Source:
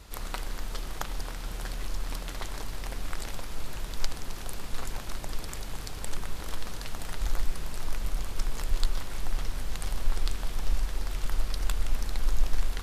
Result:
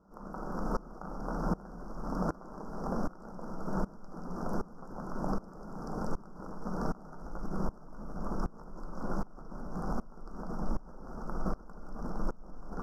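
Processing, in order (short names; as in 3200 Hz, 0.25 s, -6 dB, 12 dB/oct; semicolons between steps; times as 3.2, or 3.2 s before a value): Chebyshev band-stop 1400–5400 Hz, order 4; resonant low shelf 130 Hz -11 dB, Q 3; de-hum 49.98 Hz, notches 34; in parallel at +3 dB: negative-ratio compressor -41 dBFS, ratio -1; on the sum: air absorption 340 m; thin delay 0.192 s, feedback 75%, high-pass 3000 Hz, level -5 dB; reverb RT60 1.4 s, pre-delay 7 ms, DRR 8 dB; dB-ramp tremolo swelling 1.3 Hz, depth 23 dB; gain +4.5 dB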